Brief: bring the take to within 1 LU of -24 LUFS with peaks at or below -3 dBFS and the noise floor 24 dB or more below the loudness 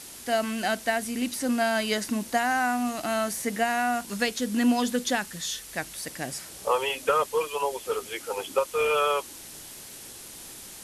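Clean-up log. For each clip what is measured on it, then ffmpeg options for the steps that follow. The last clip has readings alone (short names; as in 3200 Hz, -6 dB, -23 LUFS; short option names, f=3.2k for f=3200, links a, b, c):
noise floor -44 dBFS; noise floor target -51 dBFS; loudness -27.0 LUFS; peak -12.0 dBFS; loudness target -24.0 LUFS
-> -af "afftdn=nr=7:nf=-44"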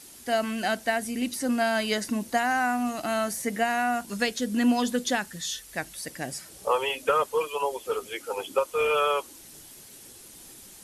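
noise floor -48 dBFS; noise floor target -52 dBFS
-> -af "afftdn=nr=6:nf=-48"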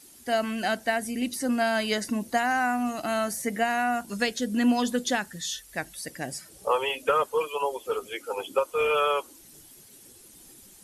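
noise floor -52 dBFS; loudness -27.5 LUFS; peak -12.0 dBFS; loudness target -24.0 LUFS
-> -af "volume=3.5dB"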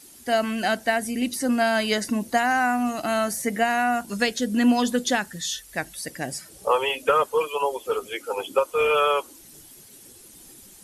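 loudness -24.0 LUFS; peak -8.5 dBFS; noise floor -48 dBFS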